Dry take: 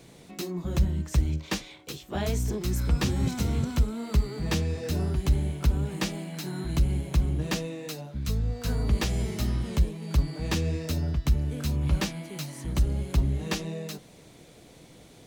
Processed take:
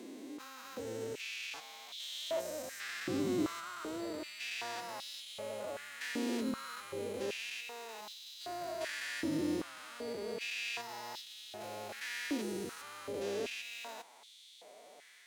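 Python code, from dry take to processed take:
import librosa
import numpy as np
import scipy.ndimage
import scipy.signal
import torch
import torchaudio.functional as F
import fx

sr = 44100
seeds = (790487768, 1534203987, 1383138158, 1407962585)

y = fx.spec_steps(x, sr, hold_ms=400)
y = fx.pitch_keep_formants(y, sr, semitones=6.5)
y = fx.filter_held_highpass(y, sr, hz=2.6, low_hz=310.0, high_hz=3500.0)
y = F.gain(torch.from_numpy(y), -3.0).numpy()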